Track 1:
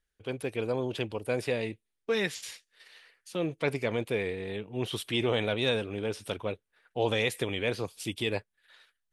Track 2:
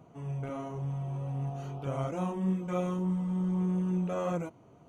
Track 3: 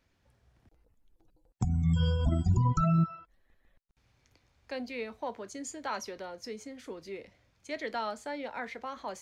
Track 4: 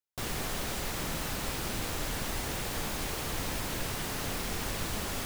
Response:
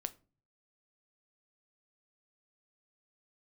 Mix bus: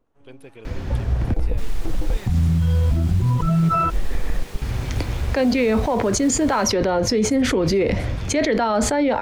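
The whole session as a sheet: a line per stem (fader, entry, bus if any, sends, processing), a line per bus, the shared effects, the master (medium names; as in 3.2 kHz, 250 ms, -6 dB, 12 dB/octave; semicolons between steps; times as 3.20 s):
-9.0 dB, 0.00 s, no send, peak limiter -22 dBFS, peak gain reduction 8 dB
-16.0 dB, 0.00 s, no send, bass shelf 160 Hz +10 dB; full-wave rectifier
-3.0 dB, 0.65 s, no send, tilt EQ -2.5 dB/octave; level flattener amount 100%
-4.5 dB, 1.40 s, no send, treble shelf 9.5 kHz -7.5 dB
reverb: none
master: peak limiter -11.5 dBFS, peak gain reduction 7.5 dB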